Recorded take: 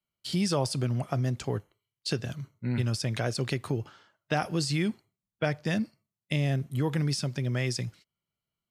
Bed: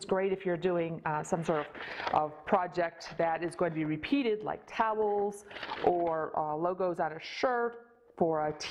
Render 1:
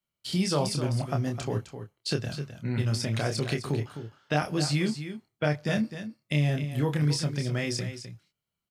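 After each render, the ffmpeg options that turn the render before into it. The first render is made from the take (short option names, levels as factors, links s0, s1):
-filter_complex "[0:a]asplit=2[s0][s1];[s1]adelay=27,volume=0.562[s2];[s0][s2]amix=inputs=2:normalize=0,aecho=1:1:258:0.299"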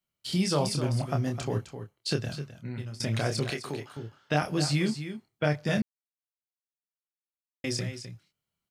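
-filter_complex "[0:a]asettb=1/sr,asplit=3[s0][s1][s2];[s0]atrim=end=3.504[s3];[s1]atrim=start=3.5:end=3.97,asetpts=PTS-STARTPTS,afade=t=in:d=0.004:c=qsin,afade=t=out:st=0.466:d=0.004:c=qsin,highpass=f=460:p=1[s4];[s2]atrim=start=3.966[s5];[s3][s4]acrossfade=d=0.004:c1=hsin:c2=qsin[s6];[s6][s5]acrossfade=d=0.004:c1=qsin:c2=hsin,asplit=4[s7][s8][s9][s10];[s7]atrim=end=3,asetpts=PTS-STARTPTS,afade=t=out:st=2.22:d=0.78:silence=0.133352[s11];[s8]atrim=start=3:end=5.82,asetpts=PTS-STARTPTS,afade=t=in:d=0.004:c=hsin:silence=0.133352,afade=t=out:st=2.816:d=0.004:c=hsin[s12];[s9]atrim=start=5.82:end=7.64,asetpts=PTS-STARTPTS,volume=0[s13];[s10]atrim=start=7.64,asetpts=PTS-STARTPTS,afade=t=in:d=0.004:c=hsin[s14];[s11][s12][s13][s14]concat=n=4:v=0:a=1"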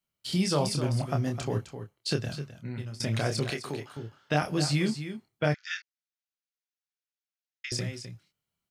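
-filter_complex "[0:a]asettb=1/sr,asplit=3[s0][s1][s2];[s0]atrim=end=5.544[s3];[s1]atrim=start=5.54:end=7.72,asetpts=PTS-STARTPTS,afade=t=in:d=0.004:c=qsin,afade=t=out:st=2.176:d=0.004:c=qsin,asuperpass=centerf=3100:order=20:qfactor=0.55[s4];[s2]atrim=start=7.716[s5];[s3][s4]acrossfade=d=0.004:c1=hsin:c2=qsin[s6];[s6][s5]acrossfade=d=0.004:c1=qsin:c2=hsin"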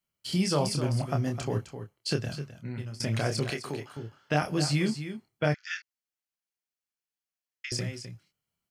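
-af "bandreject=f=3700:w=10"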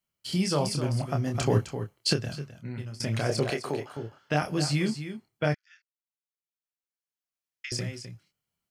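-filter_complex "[0:a]asplit=3[s0][s1][s2];[s0]afade=t=out:st=1.34:d=0.02[s3];[s1]acontrast=75,afade=t=in:st=1.34:d=0.02,afade=t=out:st=2.12:d=0.02[s4];[s2]afade=t=in:st=2.12:d=0.02[s5];[s3][s4][s5]amix=inputs=3:normalize=0,asettb=1/sr,asplit=3[s6][s7][s8];[s6]atrim=end=3.294[s9];[s7]atrim=start=3.29:end=4.19,asetpts=PTS-STARTPTS,afade=t=in:d=0.004:c=qsin,afade=t=out:st=0.896:d=0.004:c=qsin,equalizer=f=620:w=0.88:g=8.5[s10];[s8]atrim=start=4.186[s11];[s9][s10]acrossfade=d=0.004:c1=hsin:c2=qsin[s12];[s12][s11]acrossfade=d=0.004:c1=qsin:c2=hsin,asplit=2[s13][s14];[s13]atrim=end=5.55,asetpts=PTS-STARTPTS,afade=t=out:st=5.546:d=0.004:c=hsin:silence=0.0749894[s15];[s14]atrim=start=5.55,asetpts=PTS-STARTPTS,afade=t=in:d=2.12:c=qua:silence=0.0749894[s16];[s15][s16]concat=n=2:v=0:a=1"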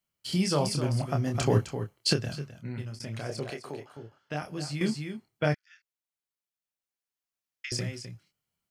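-filter_complex "[0:a]asplit=3[s0][s1][s2];[s0]atrim=end=2.992[s3];[s1]atrim=start=2.988:end=4.812,asetpts=PTS-STARTPTS,volume=0.398[s4];[s2]atrim=start=4.808[s5];[s3][s4]acrossfade=d=0.004:c1=hsin:c2=hsin[s6];[s6][s5]acrossfade=d=0.004:c1=hsin:c2=hsin"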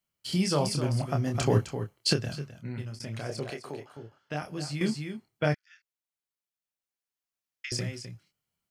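-af anull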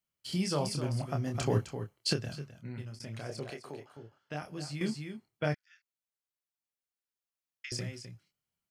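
-af "volume=0.562"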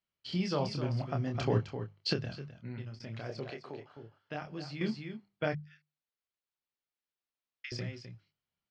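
-af "lowpass=f=4800:w=0.5412,lowpass=f=4800:w=1.3066,bandreject=f=50:t=h:w=6,bandreject=f=100:t=h:w=6,bandreject=f=150:t=h:w=6,bandreject=f=200:t=h:w=6"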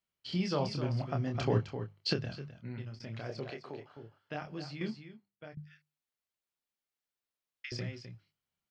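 -filter_complex "[0:a]asplit=2[s0][s1];[s0]atrim=end=5.57,asetpts=PTS-STARTPTS,afade=t=out:st=4.65:d=0.92:c=qua:silence=0.133352[s2];[s1]atrim=start=5.57,asetpts=PTS-STARTPTS,afade=t=in:d=0.004:c=hsin:silence=0.133352[s3];[s2][s3]concat=n=2:v=0:a=1"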